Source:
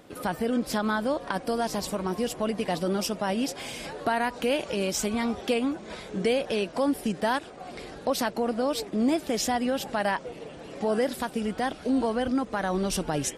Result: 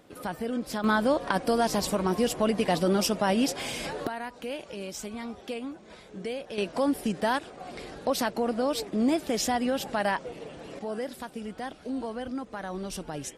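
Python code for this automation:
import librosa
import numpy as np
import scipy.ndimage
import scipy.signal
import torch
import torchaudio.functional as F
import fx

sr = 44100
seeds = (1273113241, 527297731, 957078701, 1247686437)

y = fx.gain(x, sr, db=fx.steps((0.0, -4.5), (0.84, 3.0), (4.07, -9.5), (6.58, -0.5), (10.79, -8.0)))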